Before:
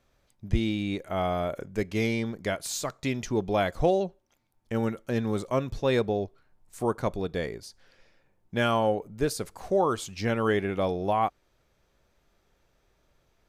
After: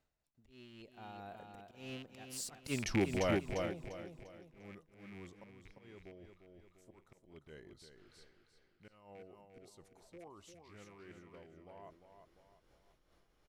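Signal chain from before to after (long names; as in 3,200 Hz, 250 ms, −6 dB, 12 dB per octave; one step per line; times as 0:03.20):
loose part that buzzes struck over −33 dBFS, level −22 dBFS
source passing by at 0:02.78, 42 m/s, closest 3.9 metres
reversed playback
upward compression, threshold −51 dBFS
reversed playback
volume swells 230 ms
on a send: repeating echo 348 ms, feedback 39%, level −6 dB
on the sum: amplitude modulation by smooth noise, depth 65%
level +6.5 dB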